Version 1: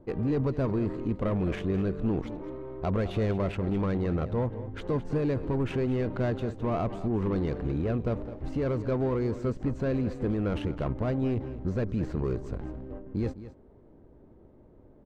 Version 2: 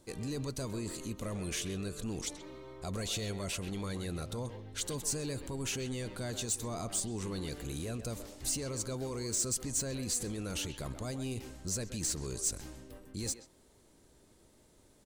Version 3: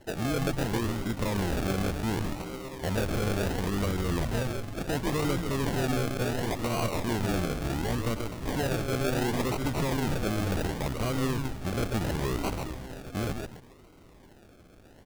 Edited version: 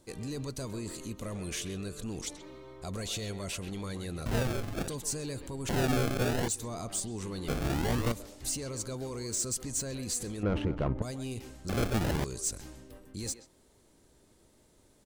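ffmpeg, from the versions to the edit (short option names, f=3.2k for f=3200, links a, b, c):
-filter_complex "[2:a]asplit=4[a][b][c][d];[1:a]asplit=6[e][f][g][h][i][j];[e]atrim=end=4.262[k];[a]atrim=start=4.258:end=4.882[l];[f]atrim=start=4.878:end=5.692[m];[b]atrim=start=5.688:end=6.482[n];[g]atrim=start=6.478:end=7.482[o];[c]atrim=start=7.478:end=8.122[p];[h]atrim=start=8.118:end=10.432[q];[0:a]atrim=start=10.428:end=11.022[r];[i]atrim=start=11.018:end=11.692[s];[d]atrim=start=11.688:end=12.242[t];[j]atrim=start=12.238[u];[k][l]acrossfade=d=0.004:c1=hsin:c2=hsin[v];[v][m]acrossfade=d=0.004:c1=hsin:c2=hsin[w];[w][n]acrossfade=d=0.004:c1=hsin:c2=hsin[x];[x][o]acrossfade=d=0.004:c1=hsin:c2=hsin[y];[y][p]acrossfade=d=0.004:c1=hsin:c2=hsin[z];[z][q]acrossfade=d=0.004:c1=hsin:c2=hsin[aa];[aa][r]acrossfade=d=0.004:c1=hsin:c2=hsin[ab];[ab][s]acrossfade=d=0.004:c1=hsin:c2=hsin[ac];[ac][t]acrossfade=d=0.004:c1=hsin:c2=hsin[ad];[ad][u]acrossfade=d=0.004:c1=hsin:c2=hsin"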